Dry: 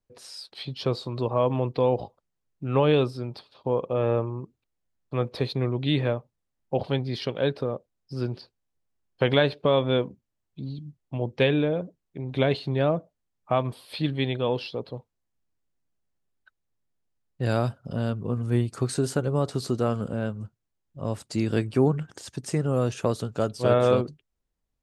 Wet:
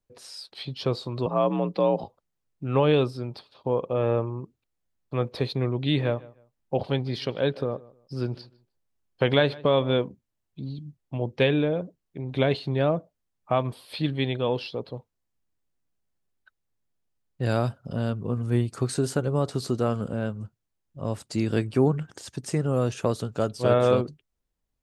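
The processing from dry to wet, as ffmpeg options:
-filter_complex "[0:a]asettb=1/sr,asplit=3[s0][s1][s2];[s0]atrim=end=1.264[s3];[s1]atrim=start=1.26:end=2.04,asetpts=PTS-STARTPTS,afade=t=in:d=0.004:c=qsin,afade=t=out:st=0.776:d=0.004:c=qsin,afreqshift=52[s4];[s2]atrim=start=2.036[s5];[s3][s4]acrossfade=d=0.004:c1=hsin:c2=qsin[s6];[s6][s5]acrossfade=d=0.004:c1=qsin:c2=hsin,asettb=1/sr,asplit=3[s7][s8][s9];[s7]atrim=end=5.804[s10];[s8]atrim=start=5.8:end=10.02,asetpts=PTS-STARTPTS,afade=t=in:d=0.004:c=qsin,afade=t=out:st=4.216:d=0.004:c=qsin,asplit=2[s11][s12];[s12]adelay=153,lowpass=f=2900:p=1,volume=0.0891,asplit=2[s13][s14];[s14]adelay=153,lowpass=f=2900:p=1,volume=0.25[s15];[s11][s13][s15]amix=inputs=3:normalize=0,atrim=end_sample=186102[s16];[s9]atrim=start=10.016[s17];[s10][s16]acrossfade=d=0.004:c1=hsin:c2=qsin[s18];[s18][s17]acrossfade=d=0.004:c1=qsin:c2=hsin"

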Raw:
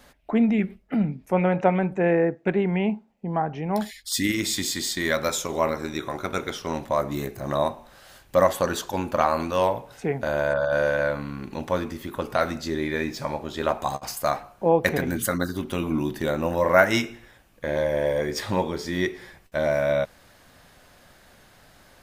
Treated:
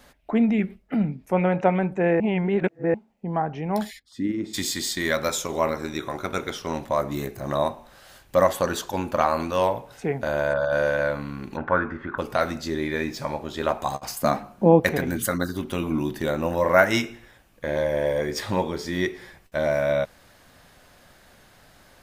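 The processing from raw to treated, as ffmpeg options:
-filter_complex "[0:a]asplit=3[s0][s1][s2];[s0]afade=t=out:st=3.98:d=0.02[s3];[s1]bandpass=f=270:t=q:w=0.84,afade=t=in:st=3.98:d=0.02,afade=t=out:st=4.53:d=0.02[s4];[s2]afade=t=in:st=4.53:d=0.02[s5];[s3][s4][s5]amix=inputs=3:normalize=0,asplit=3[s6][s7][s8];[s6]afade=t=out:st=11.56:d=0.02[s9];[s7]lowpass=f=1500:t=q:w=6.5,afade=t=in:st=11.56:d=0.02,afade=t=out:st=12.17:d=0.02[s10];[s8]afade=t=in:st=12.17:d=0.02[s11];[s9][s10][s11]amix=inputs=3:normalize=0,asettb=1/sr,asplit=3[s12][s13][s14];[s12]atrim=end=14.224[s15];[s13]atrim=start=14.22:end=14.8,asetpts=PTS-STARTPTS,afade=t=in:d=0.004:c=qsin,afade=t=out:st=0.576:d=0.004:c=qsin,equalizer=f=220:t=o:w=1.1:g=15[s16];[s14]atrim=start=14.796[s17];[s15][s16]acrossfade=d=0.004:c1=hsin:c2=qsin[s18];[s18][s17]acrossfade=d=0.004:c1=qsin:c2=hsin,asplit=3[s19][s20][s21];[s19]atrim=end=2.202[s22];[s20]atrim=start=2.198:end=2.942,asetpts=PTS-STARTPTS,areverse[s23];[s21]atrim=start=2.938[s24];[s22][s23]acrossfade=d=0.004:c1=hsin:c2=hsin[s25];[s25][s24]acrossfade=d=0.004:c1=hsin:c2=hsin"

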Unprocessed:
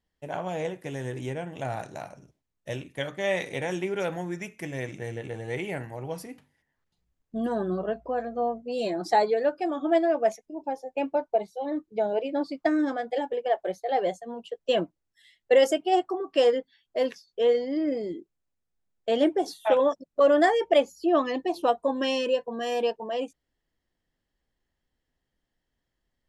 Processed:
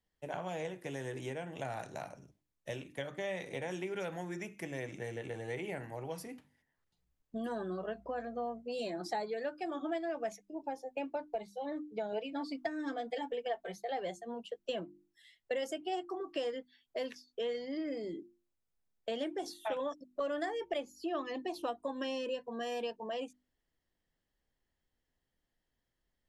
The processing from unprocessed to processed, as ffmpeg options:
-filter_complex "[0:a]asettb=1/sr,asplit=3[s0][s1][s2];[s0]atrim=end=12.124[s3];[s1]atrim=start=12.12:end=13.82,asetpts=PTS-STARTPTS,afade=t=in:d=0.004:c=qsin,afade=t=out:st=1.696:d=0.004:c=qsin,aecho=1:1:4.4:0.72,atrim=end_sample=74970[s4];[s2]atrim=start=13.816[s5];[s3][s4]acrossfade=d=0.004:c1=hsin:c2=qsin[s6];[s6][s5]acrossfade=d=0.004:c1=qsin:c2=hsin,bandreject=f=50:t=h:w=6,bandreject=f=100:t=h:w=6,bandreject=f=150:t=h:w=6,bandreject=f=200:t=h:w=6,bandreject=f=250:t=h:w=6,bandreject=f=300:t=h:w=6,bandreject=f=350:t=h:w=6,acrossover=split=220|1200[s7][s8][s9];[s7]acompressor=threshold=0.00562:ratio=4[s10];[s8]acompressor=threshold=0.0178:ratio=4[s11];[s9]acompressor=threshold=0.00891:ratio=4[s12];[s10][s11][s12]amix=inputs=3:normalize=0,volume=0.668"

